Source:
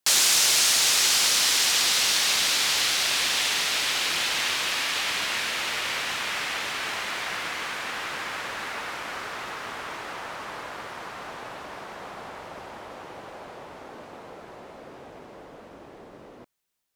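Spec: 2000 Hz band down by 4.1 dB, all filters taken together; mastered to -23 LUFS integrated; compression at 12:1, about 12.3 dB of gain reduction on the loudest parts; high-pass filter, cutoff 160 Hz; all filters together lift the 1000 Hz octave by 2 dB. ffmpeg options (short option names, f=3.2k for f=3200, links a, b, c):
-af "highpass=160,equalizer=f=1k:t=o:g=4.5,equalizer=f=2k:t=o:g=-6.5,acompressor=threshold=-30dB:ratio=12,volume=10dB"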